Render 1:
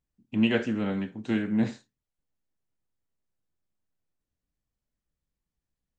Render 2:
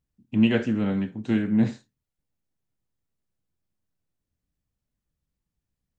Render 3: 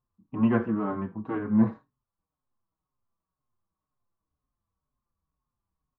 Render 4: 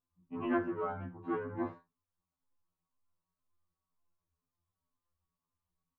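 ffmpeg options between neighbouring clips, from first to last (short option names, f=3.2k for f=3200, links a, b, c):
-af "equalizer=f=110:w=0.48:g=6.5"
-filter_complex "[0:a]lowpass=f=1.1k:t=q:w=7.5,asplit=2[a][b];[b]adelay=5.2,afreqshift=-2[c];[a][c]amix=inputs=2:normalize=1"
-af "afftfilt=real='re*2*eq(mod(b,4),0)':imag='im*2*eq(mod(b,4),0)':win_size=2048:overlap=0.75,volume=-2dB"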